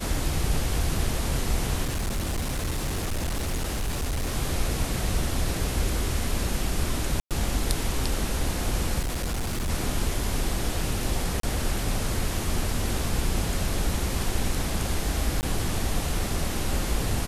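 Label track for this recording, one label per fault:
1.840000	4.340000	clipped -24 dBFS
7.200000	7.310000	dropout 107 ms
8.990000	9.700000	clipped -24.5 dBFS
11.400000	11.430000	dropout 33 ms
15.410000	15.430000	dropout 19 ms

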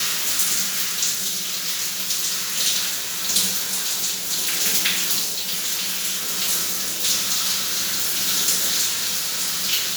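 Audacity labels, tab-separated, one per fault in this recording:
7.600000	8.280000	clipped -19 dBFS

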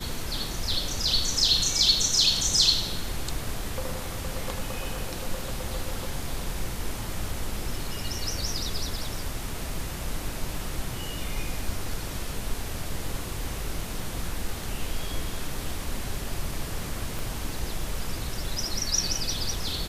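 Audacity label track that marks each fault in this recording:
17.190000	17.190000	pop

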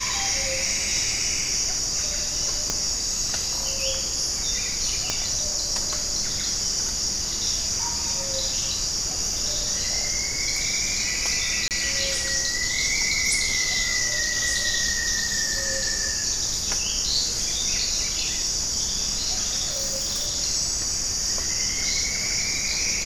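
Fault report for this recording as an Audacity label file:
2.700000	2.700000	pop -9 dBFS
5.100000	5.100000	pop -9 dBFS
11.680000	11.710000	dropout 28 ms
19.700000	20.280000	clipped -22 dBFS

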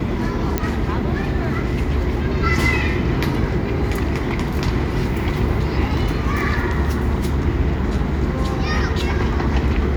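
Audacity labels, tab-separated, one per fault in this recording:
0.580000	0.580000	pop -5 dBFS

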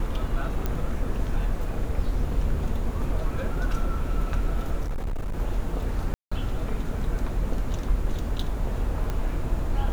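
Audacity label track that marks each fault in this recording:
0.660000	0.660000	pop -14 dBFS
4.840000	5.350000	clipped -25 dBFS
6.140000	6.320000	dropout 175 ms
9.100000	9.100000	pop -17 dBFS

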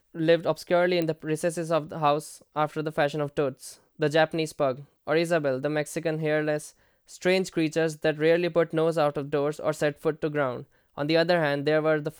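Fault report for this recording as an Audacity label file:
1.020000	1.020000	pop -16 dBFS

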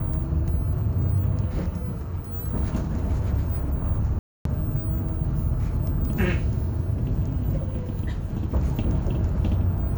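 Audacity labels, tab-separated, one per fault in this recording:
4.190000	4.450000	dropout 263 ms

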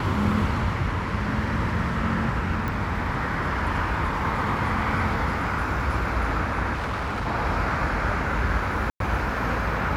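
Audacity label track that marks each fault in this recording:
2.680000	2.680000	pop
6.730000	7.280000	clipped -24.5 dBFS
8.900000	9.000000	dropout 102 ms

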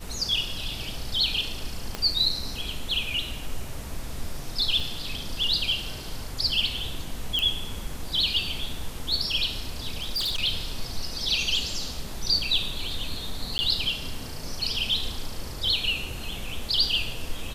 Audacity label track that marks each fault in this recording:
1.950000	1.950000	pop -14 dBFS
4.800000	4.800000	dropout 2.9 ms
7.390000	7.390000	pop -12 dBFS
9.970000	10.400000	clipped -24 dBFS
13.580000	13.590000	dropout 10 ms

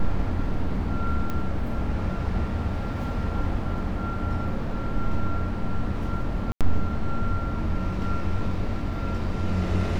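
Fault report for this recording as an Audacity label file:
1.300000	1.300000	pop -17 dBFS
6.520000	6.610000	dropout 87 ms

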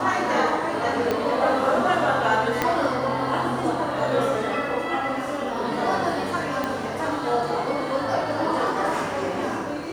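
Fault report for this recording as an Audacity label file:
1.110000	1.110000	pop -10 dBFS
2.620000	2.620000	pop -6 dBFS
6.640000	6.640000	pop -12 dBFS

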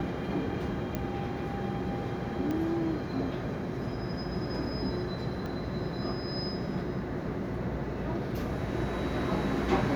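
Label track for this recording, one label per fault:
0.950000	0.950000	pop -18 dBFS
2.510000	2.510000	pop -22 dBFS
5.460000	5.460000	pop -26 dBFS

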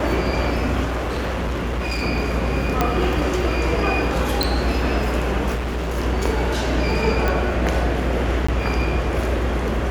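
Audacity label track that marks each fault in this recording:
0.840000	2.030000	clipped -20 dBFS
2.810000	2.810000	pop -4 dBFS
4.430000	4.430000	pop
5.540000	5.980000	clipped -21 dBFS
7.280000	7.280000	pop
8.470000	8.480000	dropout 15 ms

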